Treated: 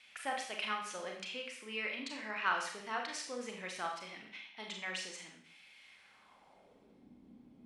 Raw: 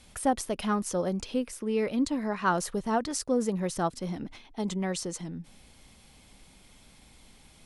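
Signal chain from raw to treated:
pitch vibrato 1.8 Hz 11 cents
four-comb reverb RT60 0.57 s, combs from 29 ms, DRR 1.5 dB
band-pass filter sweep 2,400 Hz → 260 Hz, 0:05.86–0:07.10
level +4 dB

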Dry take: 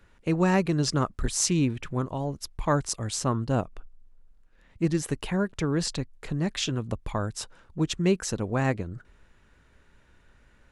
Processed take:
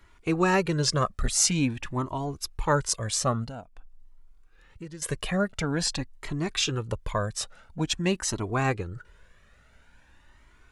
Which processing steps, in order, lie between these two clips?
low-shelf EQ 430 Hz −5.5 dB
0:03.46–0:05.02: downward compressor 3 to 1, threshold −45 dBFS, peak gain reduction 16 dB
flanger whose copies keep moving one way rising 0.48 Hz
level +8 dB

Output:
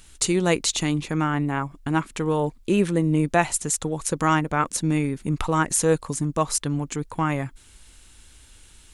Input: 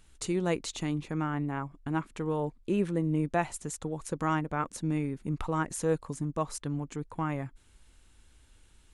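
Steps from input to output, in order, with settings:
high-shelf EQ 2,300 Hz +8.5 dB
level +7.5 dB

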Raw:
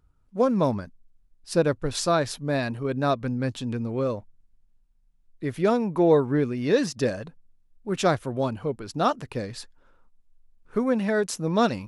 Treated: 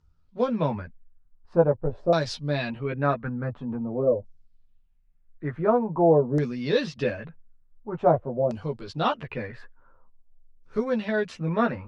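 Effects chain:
multi-voice chorus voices 6, 0.45 Hz, delay 13 ms, depth 1.2 ms
auto-filter low-pass saw down 0.47 Hz 510–6,000 Hz

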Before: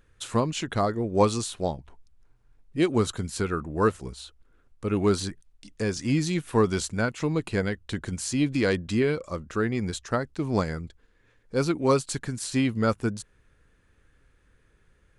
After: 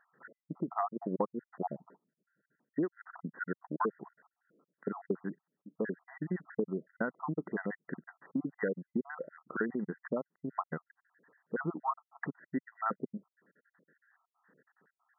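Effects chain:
time-frequency cells dropped at random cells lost 62%
downward compressor 6 to 1, threshold −32 dBFS, peak gain reduction 16 dB
linear-phase brick-wall band-pass 150–2,000 Hz
level +2.5 dB

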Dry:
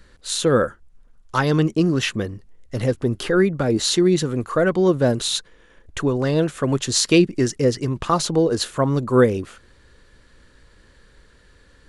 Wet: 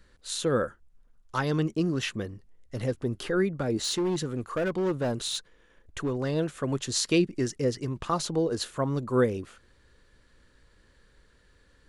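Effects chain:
0:03.83–0:06.20: hard clipping −15 dBFS, distortion −18 dB
level −8.5 dB

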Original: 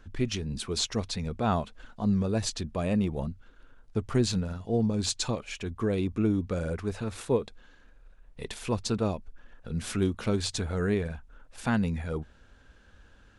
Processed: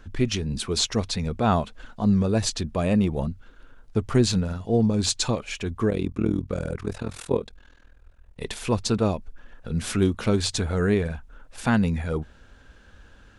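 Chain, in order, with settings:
0:05.90–0:08.41: amplitude modulation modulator 41 Hz, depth 85%
level +5.5 dB

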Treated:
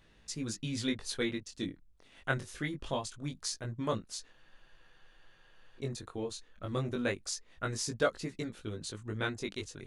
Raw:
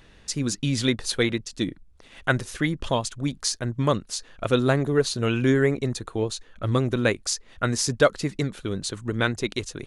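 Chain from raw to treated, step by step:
chorus effect 0.24 Hz, delay 18 ms, depth 3.9 ms
frozen spectrum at 0:04.34, 1.45 s
level −7.5 dB

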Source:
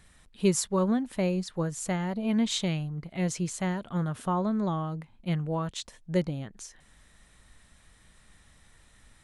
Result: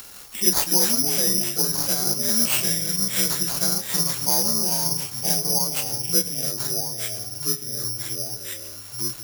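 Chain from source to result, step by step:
partials spread apart or drawn together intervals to 87%
low-shelf EQ 230 Hz −11.5 dB
noise gate with hold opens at −52 dBFS
upward compression, threshold −45 dBFS
delay with pitch and tempo change per echo 161 ms, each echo −3 semitones, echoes 3, each echo −6 dB
on a send at −12 dB: convolution reverb RT60 0.65 s, pre-delay 4 ms
on the sum: bad sample-rate conversion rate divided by 8×, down none, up zero stuff
multiband upward and downward compressor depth 40%
level +2 dB

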